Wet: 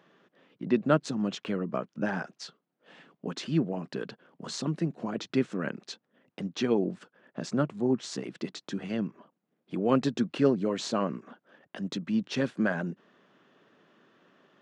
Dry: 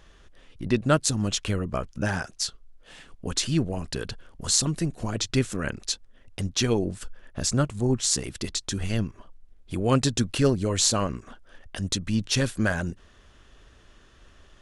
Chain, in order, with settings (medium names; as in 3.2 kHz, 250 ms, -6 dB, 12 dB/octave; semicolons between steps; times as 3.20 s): steep high-pass 160 Hz 36 dB/octave; tape spacing loss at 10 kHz 28 dB